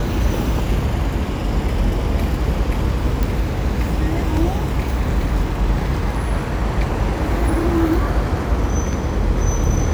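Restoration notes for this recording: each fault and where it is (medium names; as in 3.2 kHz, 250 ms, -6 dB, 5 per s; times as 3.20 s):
3.23 s: pop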